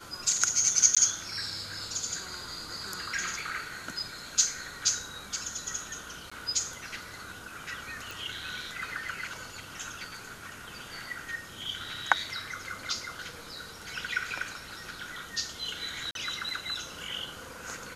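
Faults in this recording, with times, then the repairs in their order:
0:00.95–0:00.97: drop-out 16 ms
0:06.30–0:06.32: drop-out 15 ms
0:08.11: click
0:16.11–0:16.15: drop-out 42 ms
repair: click removal
repair the gap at 0:00.95, 16 ms
repair the gap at 0:06.30, 15 ms
repair the gap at 0:16.11, 42 ms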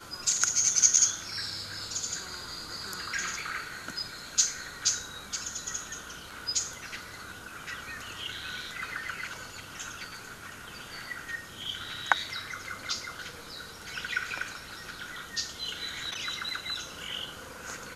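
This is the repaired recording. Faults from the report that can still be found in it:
none of them is left

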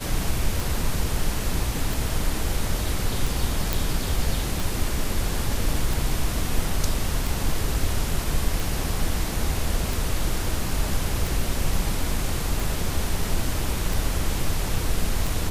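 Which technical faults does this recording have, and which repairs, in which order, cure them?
scratch tick 45 rpm
0:03.73: click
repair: click removal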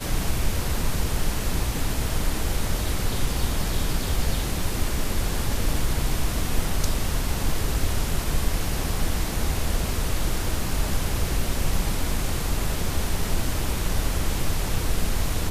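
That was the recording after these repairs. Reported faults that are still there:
none of them is left

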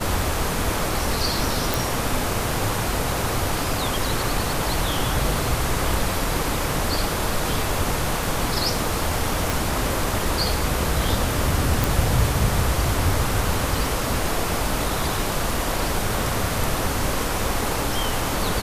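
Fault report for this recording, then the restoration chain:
0:01.74: click
0:09.50: click
0:11.84: click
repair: click removal

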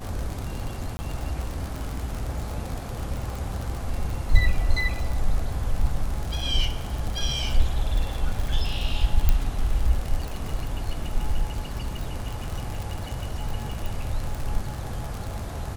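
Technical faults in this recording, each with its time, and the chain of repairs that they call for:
surface crackle 58 per second −27 dBFS
0:00.97–0:00.99: drop-out 20 ms
0:09.29: click −7 dBFS
0:13.86: click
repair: click removal
repair the gap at 0:00.97, 20 ms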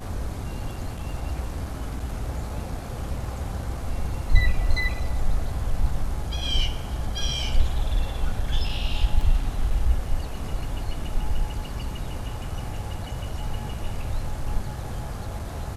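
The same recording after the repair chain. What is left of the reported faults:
none of them is left

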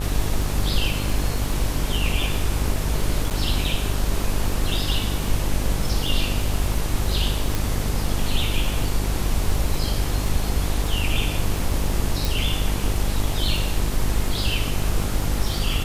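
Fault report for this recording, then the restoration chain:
mains buzz 50 Hz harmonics 26 −26 dBFS
surface crackle 41 per second −28 dBFS
0:03.30–0:03.31: drop-out 8.8 ms
0:07.55: click
0:12.25: click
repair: click removal
hum removal 50 Hz, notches 26
repair the gap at 0:03.30, 8.8 ms

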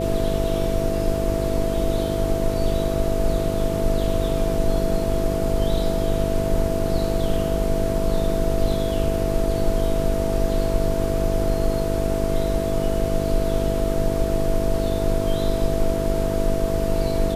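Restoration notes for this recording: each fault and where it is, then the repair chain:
mains buzz 50 Hz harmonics 10 −26 dBFS
whistle 660 Hz −25 dBFS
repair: hum removal 50 Hz, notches 10
notch filter 660 Hz, Q 30

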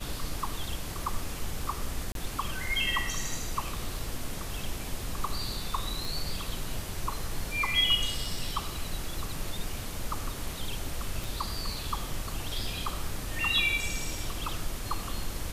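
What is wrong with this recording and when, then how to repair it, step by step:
0:02.12–0:02.15: drop-out 32 ms
0:06.05: click
0:11.24: click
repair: click removal
repair the gap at 0:02.12, 32 ms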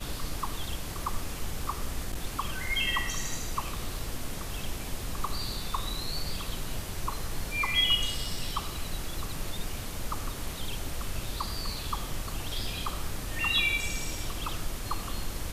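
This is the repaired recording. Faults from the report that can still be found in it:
none of them is left

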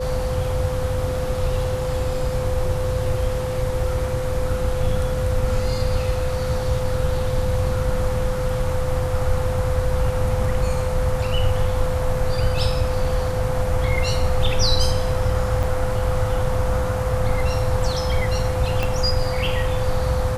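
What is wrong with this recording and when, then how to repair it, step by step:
whistle 510 Hz −25 dBFS
0:15.63: drop-out 4.1 ms
0:18.83: click −9 dBFS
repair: click removal
notch filter 510 Hz, Q 30
repair the gap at 0:15.63, 4.1 ms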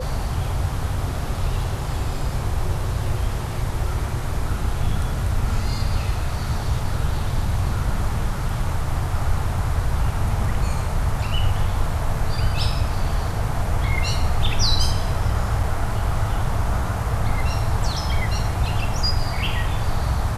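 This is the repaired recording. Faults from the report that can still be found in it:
0:18.83: click

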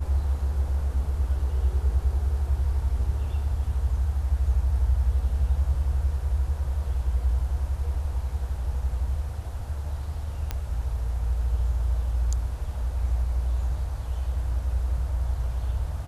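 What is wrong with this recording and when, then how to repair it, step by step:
0:10.51: click −15 dBFS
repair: click removal

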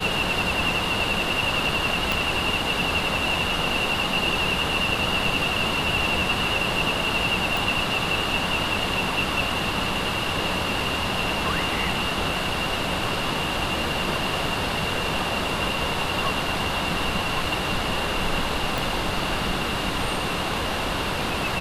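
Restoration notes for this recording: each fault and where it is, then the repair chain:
0:02.12: click
0:07.57: click
0:18.78: click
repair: click removal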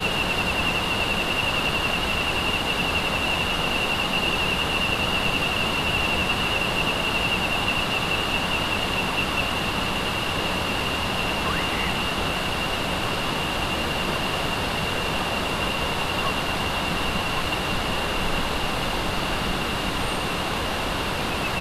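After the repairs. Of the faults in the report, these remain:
0:02.12: click
0:18.78: click

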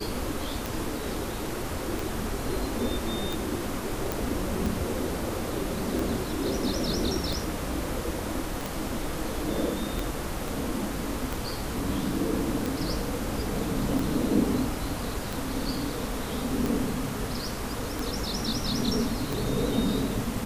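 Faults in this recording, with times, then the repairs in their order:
scratch tick 45 rpm
0:04.12: click
0:08.61: click
0:10.48: click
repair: click removal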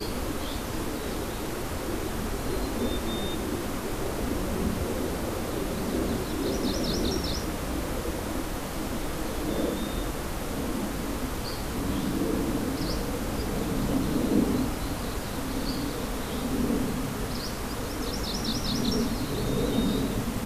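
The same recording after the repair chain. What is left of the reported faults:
0:08.61: click
0:10.48: click

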